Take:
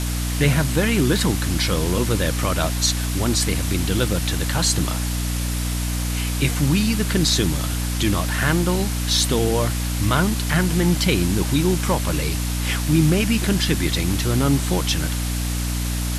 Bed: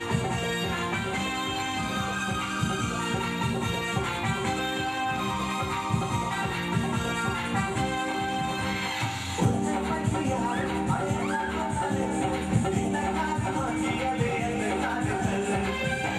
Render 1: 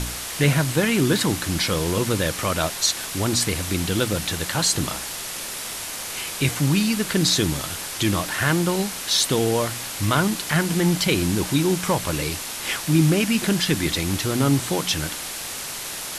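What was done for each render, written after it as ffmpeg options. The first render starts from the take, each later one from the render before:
-af "bandreject=f=60:t=h:w=4,bandreject=f=120:t=h:w=4,bandreject=f=180:t=h:w=4,bandreject=f=240:t=h:w=4,bandreject=f=300:t=h:w=4"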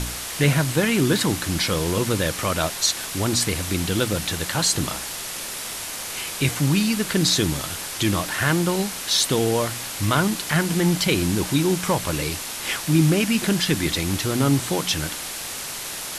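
-af anull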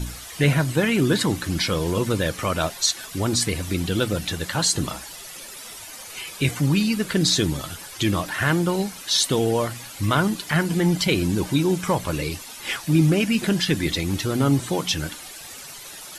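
-af "afftdn=nr=12:nf=-32"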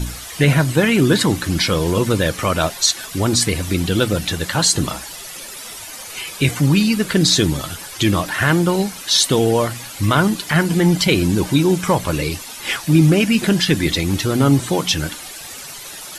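-af "volume=1.88,alimiter=limit=0.708:level=0:latency=1"

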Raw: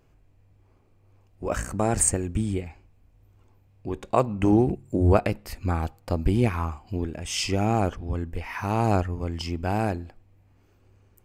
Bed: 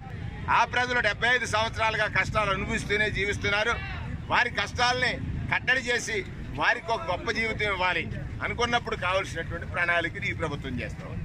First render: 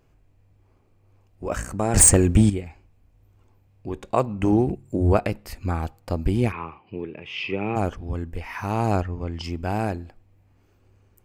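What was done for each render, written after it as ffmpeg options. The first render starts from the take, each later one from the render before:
-filter_complex "[0:a]asettb=1/sr,asplit=3[s0][s1][s2];[s0]atrim=end=1.944[s3];[s1]atrim=start=1.94:end=2.5,asetpts=PTS-STARTPTS,afade=t=in:d=0.004:c=qsin,afade=t=out:st=0.556:d=0.004:c=qsin,aeval=exprs='0.422*sin(PI/2*2.51*val(0)/0.422)':c=same[s4];[s2]atrim=start=2.496[s5];[s3][s4]acrossfade=d=0.004:c1=hsin:c2=qsin[s6];[s6][s5]acrossfade=d=0.004:c1=qsin:c2=hsin,asplit=3[s7][s8][s9];[s7]afade=t=out:st=6.51:d=0.02[s10];[s8]highpass=f=130:w=0.5412,highpass=f=130:w=1.3066,equalizer=f=160:t=q:w=4:g=-4,equalizer=f=250:t=q:w=4:g=-7,equalizer=f=420:t=q:w=4:g=4,equalizer=f=690:t=q:w=4:g=-9,equalizer=f=1500:t=q:w=4:g=-7,equalizer=f=2500:t=q:w=4:g=7,lowpass=f=3000:w=0.5412,lowpass=f=3000:w=1.3066,afade=t=in:st=6.51:d=0.02,afade=t=out:st=7.75:d=0.02[s11];[s9]afade=t=in:st=7.75:d=0.02[s12];[s10][s11][s12]amix=inputs=3:normalize=0,asettb=1/sr,asplit=3[s13][s14][s15];[s13]atrim=end=9.024[s16];[s14]atrim=start=9.02:end=9.44,asetpts=PTS-STARTPTS,afade=t=in:d=0.004:c=qsin,afade=t=out:st=0.416:d=0.004:c=qsin,lowpass=4900[s17];[s15]atrim=start=9.436[s18];[s16][s17]acrossfade=d=0.004:c1=hsin:c2=qsin[s19];[s19][s18]acrossfade=d=0.004:c1=qsin:c2=hsin"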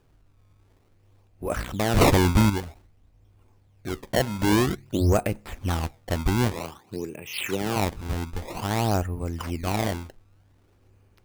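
-af "acrusher=samples=21:mix=1:aa=0.000001:lfo=1:lforange=33.6:lforate=0.52,asoftclip=type=tanh:threshold=0.266"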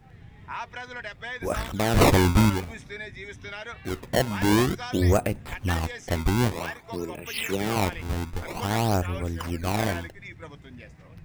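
-filter_complex "[1:a]volume=0.237[s0];[0:a][s0]amix=inputs=2:normalize=0"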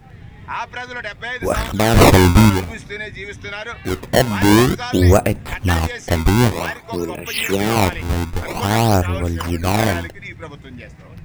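-af "volume=2.82,alimiter=limit=0.708:level=0:latency=1"

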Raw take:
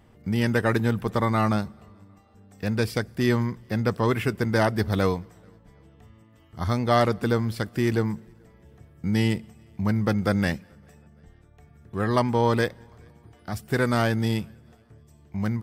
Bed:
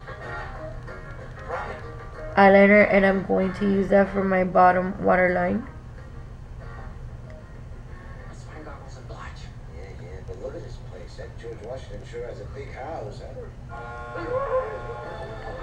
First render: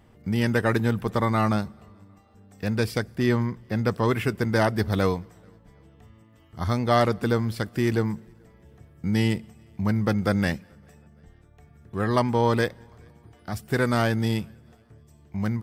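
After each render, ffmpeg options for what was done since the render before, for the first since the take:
-filter_complex "[0:a]asettb=1/sr,asplit=3[s0][s1][s2];[s0]atrim=end=3.164[s3];[s1]atrim=start=3.16:end=3.76,asetpts=PTS-STARTPTS,afade=t=in:d=0.004:c=qsin,afade=t=out:st=0.596:d=0.004:c=qsin,highshelf=f=4100:g=-5.5[s4];[s2]atrim=start=3.756[s5];[s3][s4]acrossfade=d=0.004:c1=hsin:c2=qsin[s6];[s6][s5]acrossfade=d=0.004:c1=qsin:c2=hsin"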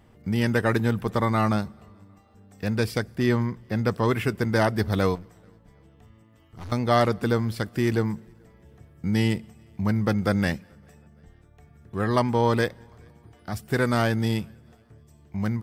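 -filter_complex "[0:a]asettb=1/sr,asplit=3[s0][s1][s2];[s0]atrim=end=5.154[s3];[s1]atrim=start=5.15:end=6.72,asetpts=PTS-STARTPTS,afade=t=in:d=0.004:c=qsin,afade=t=out:st=1.566:d=0.004:c=qsin,aeval=exprs='(tanh(63.1*val(0)+0.4)-tanh(0.4))/63.1':c=same[s4];[s2]atrim=start=6.716[s5];[s3][s4]acrossfade=d=0.004:c1=hsin:c2=qsin[s6];[s6][s5]acrossfade=d=0.004:c1=qsin:c2=hsin"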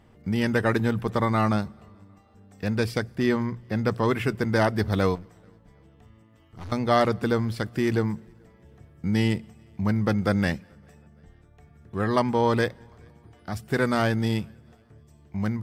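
-af "highshelf=f=10000:g=-7,bandreject=f=60:t=h:w=6,bandreject=f=120:t=h:w=6"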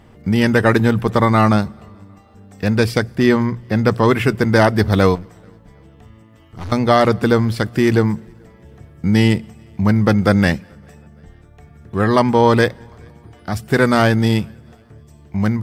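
-af "volume=2.99,alimiter=limit=0.794:level=0:latency=1"

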